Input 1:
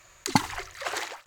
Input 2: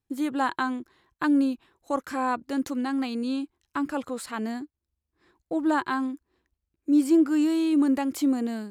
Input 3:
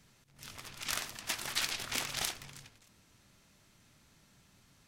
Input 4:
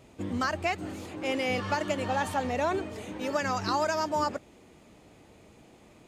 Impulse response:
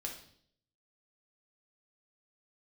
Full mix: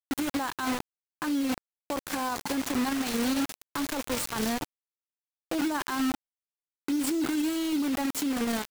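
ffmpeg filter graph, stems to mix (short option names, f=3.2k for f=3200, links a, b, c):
-filter_complex "[0:a]highpass=210,adelay=2100,volume=-6.5dB[a];[1:a]highshelf=f=5.3k:g=5.5,volume=-0.5dB,asplit=3[b][c][d];[c]volume=-12dB[e];[2:a]asubboost=boost=7.5:cutoff=250,adelay=2200,volume=-5dB,asplit=2[f][g];[g]volume=-15.5dB[h];[3:a]acompressor=threshold=-33dB:ratio=6,volume=-11dB,asplit=2[i][j];[j]volume=-5dB[k];[d]apad=whole_len=312129[l];[f][l]sidechaingate=range=-33dB:threshold=-56dB:ratio=16:detection=peak[m];[4:a]atrim=start_sample=2205[n];[e][h][k]amix=inputs=3:normalize=0[o];[o][n]afir=irnorm=-1:irlink=0[p];[a][b][m][i][p]amix=inputs=5:normalize=0,acrusher=bits=4:mix=0:aa=0.000001,alimiter=limit=-23dB:level=0:latency=1:release=11"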